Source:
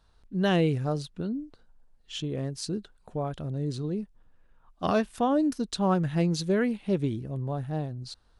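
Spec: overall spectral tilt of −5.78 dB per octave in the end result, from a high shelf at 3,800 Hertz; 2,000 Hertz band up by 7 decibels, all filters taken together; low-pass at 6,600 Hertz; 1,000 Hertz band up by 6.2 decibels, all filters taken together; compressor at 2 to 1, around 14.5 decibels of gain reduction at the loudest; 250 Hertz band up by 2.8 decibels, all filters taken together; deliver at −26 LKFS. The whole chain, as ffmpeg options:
ffmpeg -i in.wav -af "lowpass=6600,equalizer=frequency=250:width_type=o:gain=3.5,equalizer=frequency=1000:width_type=o:gain=7,equalizer=frequency=2000:width_type=o:gain=8,highshelf=frequency=3800:gain=-6.5,acompressor=threshold=-44dB:ratio=2,volume=13dB" out.wav

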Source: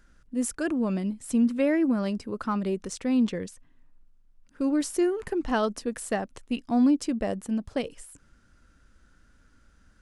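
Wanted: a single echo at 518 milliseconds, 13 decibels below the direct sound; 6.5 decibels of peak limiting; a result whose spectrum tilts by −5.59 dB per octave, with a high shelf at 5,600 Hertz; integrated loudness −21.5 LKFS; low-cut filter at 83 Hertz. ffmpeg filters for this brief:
ffmpeg -i in.wav -af "highpass=83,highshelf=frequency=5600:gain=-3.5,alimiter=limit=-19.5dB:level=0:latency=1,aecho=1:1:518:0.224,volume=8dB" out.wav

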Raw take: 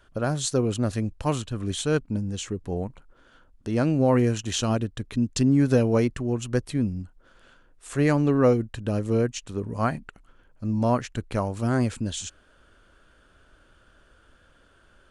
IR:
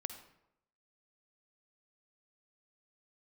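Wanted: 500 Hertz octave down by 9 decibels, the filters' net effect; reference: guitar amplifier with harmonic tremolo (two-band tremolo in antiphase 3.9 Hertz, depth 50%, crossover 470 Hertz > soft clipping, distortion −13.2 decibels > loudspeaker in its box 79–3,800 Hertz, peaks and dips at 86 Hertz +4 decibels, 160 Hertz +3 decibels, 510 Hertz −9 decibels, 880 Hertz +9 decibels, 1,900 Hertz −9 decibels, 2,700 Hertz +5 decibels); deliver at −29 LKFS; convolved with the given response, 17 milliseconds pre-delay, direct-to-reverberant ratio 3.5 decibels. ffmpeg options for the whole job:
-filter_complex "[0:a]equalizer=frequency=500:width_type=o:gain=-7,asplit=2[link_01][link_02];[1:a]atrim=start_sample=2205,adelay=17[link_03];[link_02][link_03]afir=irnorm=-1:irlink=0,volume=-2dB[link_04];[link_01][link_04]amix=inputs=2:normalize=0,acrossover=split=470[link_05][link_06];[link_05]aeval=exprs='val(0)*(1-0.5/2+0.5/2*cos(2*PI*3.9*n/s))':channel_layout=same[link_07];[link_06]aeval=exprs='val(0)*(1-0.5/2-0.5/2*cos(2*PI*3.9*n/s))':channel_layout=same[link_08];[link_07][link_08]amix=inputs=2:normalize=0,asoftclip=threshold=-20dB,highpass=79,equalizer=frequency=86:width_type=q:width=4:gain=4,equalizer=frequency=160:width_type=q:width=4:gain=3,equalizer=frequency=510:width_type=q:width=4:gain=-9,equalizer=frequency=880:width_type=q:width=4:gain=9,equalizer=frequency=1900:width_type=q:width=4:gain=-9,equalizer=frequency=2700:width_type=q:width=4:gain=5,lowpass=frequency=3800:width=0.5412,lowpass=frequency=3800:width=1.3066,volume=1dB"

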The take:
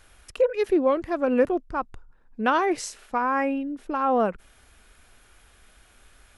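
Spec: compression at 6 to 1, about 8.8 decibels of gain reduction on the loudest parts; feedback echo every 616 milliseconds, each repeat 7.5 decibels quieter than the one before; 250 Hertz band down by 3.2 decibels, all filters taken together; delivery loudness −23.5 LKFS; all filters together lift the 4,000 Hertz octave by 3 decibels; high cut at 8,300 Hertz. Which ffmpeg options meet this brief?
ffmpeg -i in.wav -af "lowpass=8300,equalizer=frequency=250:width_type=o:gain=-4,equalizer=frequency=4000:width_type=o:gain=4.5,acompressor=threshold=-26dB:ratio=6,aecho=1:1:616|1232|1848|2464|3080:0.422|0.177|0.0744|0.0312|0.0131,volume=8dB" out.wav

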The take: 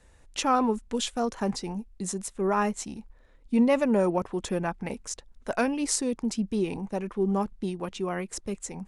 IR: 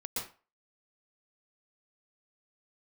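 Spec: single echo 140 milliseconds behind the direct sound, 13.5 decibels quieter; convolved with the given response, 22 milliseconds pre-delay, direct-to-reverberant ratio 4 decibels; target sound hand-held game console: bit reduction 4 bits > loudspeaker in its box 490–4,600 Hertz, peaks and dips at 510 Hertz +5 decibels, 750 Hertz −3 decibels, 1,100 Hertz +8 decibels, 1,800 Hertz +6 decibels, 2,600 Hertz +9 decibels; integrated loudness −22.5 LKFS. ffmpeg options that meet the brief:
-filter_complex "[0:a]aecho=1:1:140:0.211,asplit=2[link_01][link_02];[1:a]atrim=start_sample=2205,adelay=22[link_03];[link_02][link_03]afir=irnorm=-1:irlink=0,volume=-6dB[link_04];[link_01][link_04]amix=inputs=2:normalize=0,acrusher=bits=3:mix=0:aa=0.000001,highpass=490,equalizer=frequency=510:width_type=q:width=4:gain=5,equalizer=frequency=750:width_type=q:width=4:gain=-3,equalizer=frequency=1100:width_type=q:width=4:gain=8,equalizer=frequency=1800:width_type=q:width=4:gain=6,equalizer=frequency=2600:width_type=q:width=4:gain=9,lowpass=frequency=4600:width=0.5412,lowpass=frequency=4600:width=1.3066,volume=1.5dB"

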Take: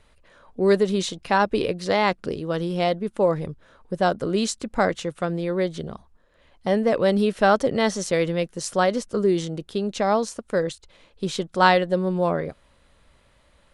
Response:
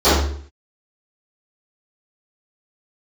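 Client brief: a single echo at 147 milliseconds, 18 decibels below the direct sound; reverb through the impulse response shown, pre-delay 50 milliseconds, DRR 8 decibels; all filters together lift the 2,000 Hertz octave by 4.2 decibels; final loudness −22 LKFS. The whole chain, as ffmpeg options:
-filter_complex "[0:a]equalizer=frequency=2000:width_type=o:gain=5.5,aecho=1:1:147:0.126,asplit=2[link_01][link_02];[1:a]atrim=start_sample=2205,adelay=50[link_03];[link_02][link_03]afir=irnorm=-1:irlink=0,volume=-35dB[link_04];[link_01][link_04]amix=inputs=2:normalize=0,volume=-1dB"

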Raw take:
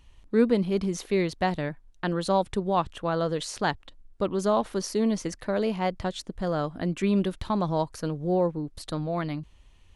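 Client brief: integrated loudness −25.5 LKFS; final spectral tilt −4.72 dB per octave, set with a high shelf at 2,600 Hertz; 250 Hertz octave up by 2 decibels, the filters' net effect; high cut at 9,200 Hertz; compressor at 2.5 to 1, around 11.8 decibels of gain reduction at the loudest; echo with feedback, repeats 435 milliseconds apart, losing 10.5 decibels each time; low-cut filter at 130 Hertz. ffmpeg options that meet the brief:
ffmpeg -i in.wav -af "highpass=130,lowpass=9200,equalizer=frequency=250:width_type=o:gain=3.5,highshelf=frequency=2600:gain=8,acompressor=threshold=-32dB:ratio=2.5,aecho=1:1:435|870|1305:0.299|0.0896|0.0269,volume=8dB" out.wav

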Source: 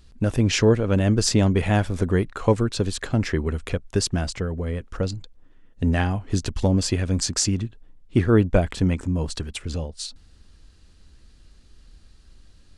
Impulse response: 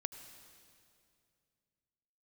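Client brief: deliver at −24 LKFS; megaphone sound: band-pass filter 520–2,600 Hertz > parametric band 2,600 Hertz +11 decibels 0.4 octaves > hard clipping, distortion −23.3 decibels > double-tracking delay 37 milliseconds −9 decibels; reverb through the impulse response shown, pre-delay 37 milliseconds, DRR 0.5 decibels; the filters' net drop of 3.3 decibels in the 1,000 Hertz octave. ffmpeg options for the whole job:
-filter_complex "[0:a]equalizer=frequency=1000:width_type=o:gain=-4,asplit=2[link_01][link_02];[1:a]atrim=start_sample=2205,adelay=37[link_03];[link_02][link_03]afir=irnorm=-1:irlink=0,volume=1dB[link_04];[link_01][link_04]amix=inputs=2:normalize=0,highpass=520,lowpass=2600,equalizer=frequency=2600:width_type=o:width=0.4:gain=11,asoftclip=type=hard:threshold=-13.5dB,asplit=2[link_05][link_06];[link_06]adelay=37,volume=-9dB[link_07];[link_05][link_07]amix=inputs=2:normalize=0,volume=2.5dB"

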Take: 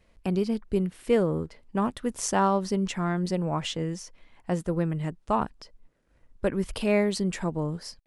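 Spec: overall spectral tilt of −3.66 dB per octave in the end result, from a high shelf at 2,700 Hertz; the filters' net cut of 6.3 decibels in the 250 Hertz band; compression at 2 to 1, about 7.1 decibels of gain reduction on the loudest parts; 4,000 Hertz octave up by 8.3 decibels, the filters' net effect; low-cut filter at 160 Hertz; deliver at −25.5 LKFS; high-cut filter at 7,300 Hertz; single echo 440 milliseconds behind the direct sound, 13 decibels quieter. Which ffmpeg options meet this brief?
ffmpeg -i in.wav -af "highpass=160,lowpass=7300,equalizer=frequency=250:width_type=o:gain=-7.5,highshelf=frequency=2700:gain=4,equalizer=frequency=4000:width_type=o:gain=8,acompressor=threshold=-32dB:ratio=2,aecho=1:1:440:0.224,volume=8.5dB" out.wav

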